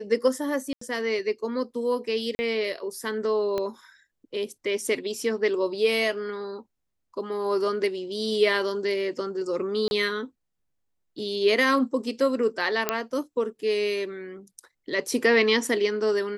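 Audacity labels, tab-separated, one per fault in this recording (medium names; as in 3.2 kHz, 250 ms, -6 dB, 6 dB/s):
0.730000	0.810000	dropout 84 ms
2.350000	2.390000	dropout 40 ms
3.580000	3.580000	pop -16 dBFS
9.880000	9.910000	dropout 31 ms
12.890000	12.890000	pop -6 dBFS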